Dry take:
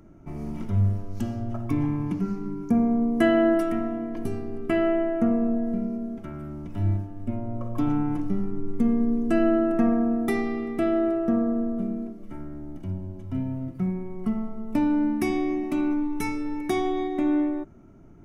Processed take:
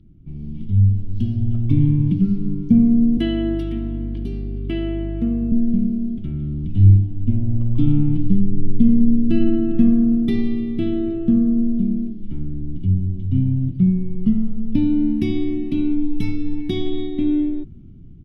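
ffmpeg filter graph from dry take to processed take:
ffmpeg -i in.wav -filter_complex "[0:a]asettb=1/sr,asplit=3[link_01][link_02][link_03];[link_01]atrim=end=3.174[link_04];[link_02]atrim=start=3.17:end=5.52,asetpts=PTS-STARTPTS,afade=type=in:duration=0.004:curve=qsin,afade=type=out:start_time=2.346:duration=0.004:curve=qsin,highpass=320,aeval=exprs='val(0)+0.0112*(sin(2*PI*50*n/s)+sin(2*PI*2*50*n/s)/2+sin(2*PI*3*50*n/s)/3+sin(2*PI*4*50*n/s)/4+sin(2*PI*5*50*n/s)/5)':channel_layout=same[link_05];[link_03]atrim=start=5.516[link_06];[link_04][link_05]acrossfade=duration=0.004:curve1=hsin:curve2=qsin[link_07];[link_07][link_06]acrossfade=duration=0.004:curve1=qsin:curve2=hsin,firequalizer=gain_entry='entry(140,0);entry(610,-23);entry(1300,-24);entry(3300,2);entry(6700,-22)':delay=0.05:min_phase=1,dynaudnorm=framelen=470:gausssize=5:maxgain=9.5dB,lowshelf=frequency=360:gain=7.5,volume=-2dB" out.wav

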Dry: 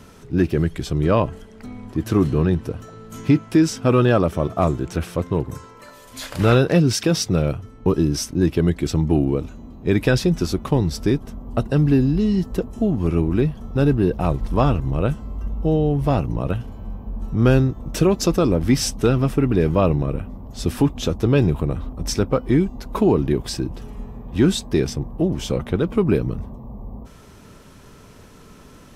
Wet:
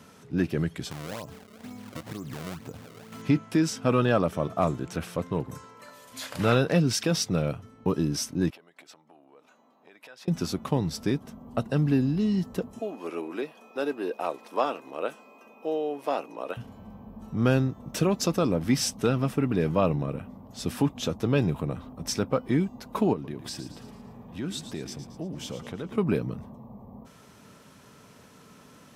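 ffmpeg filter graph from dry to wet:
ffmpeg -i in.wav -filter_complex "[0:a]asettb=1/sr,asplit=3[link_01][link_02][link_03];[link_01]atrim=end=0.914[link_04];[link_02]atrim=start=0.91:end=3.22,asetpts=PTS-STARTPTS,afade=type=in:duration=0.004:curve=qsin,afade=type=out:start_time=2.306:duration=0.004:curve=qsin,acompressor=threshold=-25dB:ratio=12:attack=3.2:release=140:knee=1:detection=peak,acrusher=samples=30:mix=1:aa=0.000001:lfo=1:lforange=48:lforate=2.1[link_05];[link_03]atrim=start=3.216[link_06];[link_04][link_05]acrossfade=duration=0.004:curve1=hsin:curve2=qsin[link_07];[link_07][link_06]acrossfade=duration=0.004:curve1=qsin:curve2=hsin,asettb=1/sr,asplit=3[link_08][link_09][link_10];[link_08]atrim=end=8.504[link_11];[link_09]atrim=start=8.5:end=10.28,asetpts=PTS-STARTPTS,afade=type=in:duration=0.004:curve=qsin,afade=type=out:start_time=1.776:duration=0.004:curve=qsin,highshelf=frequency=2000:gain=-8.5,acompressor=threshold=-29dB:ratio=12:attack=3.2:release=140:knee=1:detection=peak,highpass=750[link_12];[link_10]atrim=start=10.276[link_13];[link_11][link_12]acrossfade=duration=0.004:curve1=hsin:curve2=qsin[link_14];[link_14][link_13]acrossfade=duration=0.004:curve1=qsin:curve2=hsin,asettb=1/sr,asplit=3[link_15][link_16][link_17];[link_15]atrim=end=12.794[link_18];[link_16]atrim=start=12.79:end=16.57,asetpts=PTS-STARTPTS,afade=type=in:duration=0.004:curve=qsin,afade=type=out:start_time=3.776:duration=0.004:curve=qsin,highpass=frequency=340:width=0.5412,highpass=frequency=340:width=1.3066,aeval=exprs='val(0)+0.002*sin(2*PI*2500*n/s)':channel_layout=same[link_19];[link_17]atrim=start=16.566[link_20];[link_18][link_19]acrossfade=duration=0.004:curve1=hsin:curve2=qsin[link_21];[link_21][link_20]acrossfade=duration=0.004:curve1=qsin:curve2=hsin,asettb=1/sr,asplit=3[link_22][link_23][link_24];[link_22]atrim=end=23.134[link_25];[link_23]atrim=start=23.13:end=25.98,asetpts=PTS-STARTPTS,afade=type=in:duration=0.004:curve=qsin,afade=type=out:start_time=2.846:duration=0.004:curve=qsin,acompressor=threshold=-30dB:ratio=2:attack=3.2:release=140:knee=1:detection=peak,asplit=6[link_26][link_27][link_28][link_29][link_30][link_31];[link_27]adelay=112,afreqshift=-35,volume=-11dB[link_32];[link_28]adelay=224,afreqshift=-70,volume=-17.2dB[link_33];[link_29]adelay=336,afreqshift=-105,volume=-23.4dB[link_34];[link_30]adelay=448,afreqshift=-140,volume=-29.6dB[link_35];[link_31]adelay=560,afreqshift=-175,volume=-35.8dB[link_36];[link_26][link_32][link_33][link_34][link_35][link_36]amix=inputs=6:normalize=0,atrim=end_sample=125685[link_37];[link_24]atrim=start=25.976[link_38];[link_25][link_37]acrossfade=duration=0.004:curve1=hsin:curve2=qsin[link_39];[link_39][link_38]acrossfade=duration=0.004:curve1=qsin:curve2=hsin,highpass=140,equalizer=frequency=360:width=2.8:gain=-5.5,volume=-4.5dB" out.wav

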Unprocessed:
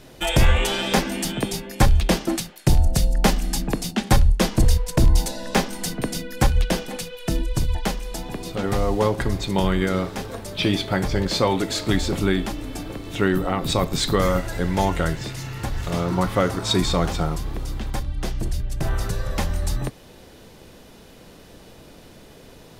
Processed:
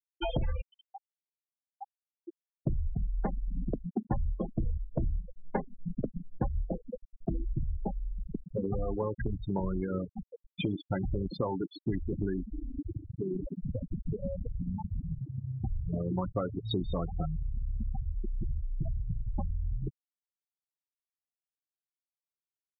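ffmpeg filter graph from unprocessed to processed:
ffmpeg -i in.wav -filter_complex "[0:a]asettb=1/sr,asplit=3[link_01][link_02][link_03];[link_01]atrim=end=0.614[link_04];[link_02]atrim=start=0.61:end=2.6,asetpts=PTS-STARTPTS,afade=type=in:duration=0.004:curve=qsin,afade=type=out:start_time=1.986:duration=0.004:curve=qsin,highpass=700,lowpass=4800,acompressor=threshold=-27dB:ratio=4:attack=3.2:release=140:knee=1:detection=peak[link_05];[link_03]atrim=start=2.596[link_06];[link_04][link_05]acrossfade=duration=0.004:curve1=hsin:curve2=qsin[link_07];[link_07][link_06]acrossfade=duration=0.004:curve1=qsin:curve2=hsin,asettb=1/sr,asplit=3[link_08][link_09][link_10];[link_08]atrim=end=12.434[link_11];[link_09]atrim=start=12.43:end=15.46,asetpts=PTS-STARTPTS,afade=type=in:duration=0.004:curve=qsin,afade=type=out:start_time=3.026:duration=0.004:curve=qsin,highshelf=frequency=2200:gain=-9.5,acompressor=threshold=-26dB:ratio=4:attack=3.2:release=140:knee=1:detection=peak,asplit=5[link_12][link_13][link_14][link_15][link_16];[link_13]adelay=314,afreqshift=57,volume=-6dB[link_17];[link_14]adelay=628,afreqshift=114,volume=-15.1dB[link_18];[link_15]adelay=942,afreqshift=171,volume=-24.2dB[link_19];[link_16]adelay=1256,afreqshift=228,volume=-33.4dB[link_20];[link_12][link_17][link_18][link_19][link_20]amix=inputs=5:normalize=0,atrim=end_sample=133623[link_21];[link_10]atrim=start=15.456[link_22];[link_11][link_21]acrossfade=duration=0.004:curve1=hsin:curve2=qsin[link_23];[link_23][link_22]acrossfade=duration=0.004:curve1=qsin:curve2=hsin,asettb=1/sr,asplit=3[link_24][link_25][link_26];[link_24]atrim=end=17.934[link_27];[link_25]atrim=start=17.93:end=19.35,asetpts=PTS-STARTPTS,afade=type=in:duration=0.004:curve=qsin,afade=type=out:start_time=1.416:duration=0.004:curve=qsin,lowshelf=frequency=73:gain=-3.5,bandreject=frequency=60:width_type=h:width=6,bandreject=frequency=120:width_type=h:width=6,bandreject=frequency=180:width_type=h:width=6,bandreject=frequency=240:width_type=h:width=6,bandreject=frequency=300:width_type=h:width=6,bandreject=frequency=360:width_type=h:width=6[link_28];[link_26]atrim=start=19.346[link_29];[link_27][link_28]acrossfade=duration=0.004:curve1=hsin:curve2=qsin[link_30];[link_30][link_29]acrossfade=duration=0.004:curve1=qsin:curve2=hsin,afftfilt=real='re*gte(hypot(re,im),0.224)':imag='im*gte(hypot(re,im),0.224)':win_size=1024:overlap=0.75,lowpass=2000,acompressor=threshold=-29dB:ratio=6" out.wav

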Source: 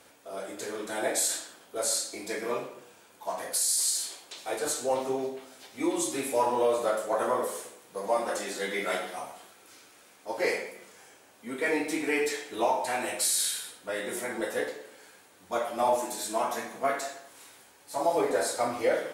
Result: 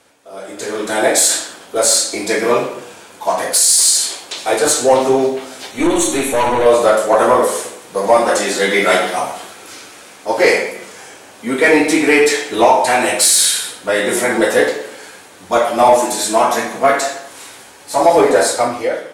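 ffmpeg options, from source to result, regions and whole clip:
ffmpeg -i in.wav -filter_complex "[0:a]asettb=1/sr,asplit=3[link_01][link_02][link_03];[link_01]atrim=end=5.714[link_04];[link_02]atrim=start=5.71:end=6.66,asetpts=PTS-STARTPTS,afade=type=in:duration=0.004:curve=qsin,afade=type=out:start_time=0.946:duration=0.004:curve=qsin,aeval=exprs='(tanh(25.1*val(0)+0.4)-tanh(0.4))/25.1':channel_layout=same,asuperstop=centerf=5000:order=4:qfactor=5.6[link_05];[link_03]atrim=start=6.656[link_06];[link_04][link_05]acrossfade=duration=0.004:curve1=hsin:curve2=qsin[link_07];[link_07][link_06]acrossfade=duration=0.004:curve1=qsin:curve2=hsin,dynaudnorm=framelen=100:gausssize=13:maxgain=17dB,lowpass=11000,acontrast=24,volume=-1dB" out.wav

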